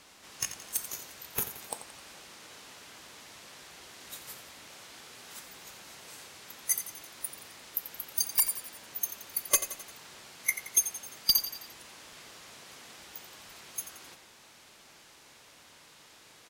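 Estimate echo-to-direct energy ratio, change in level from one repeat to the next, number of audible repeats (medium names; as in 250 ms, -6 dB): -10.5 dB, -5.5 dB, 4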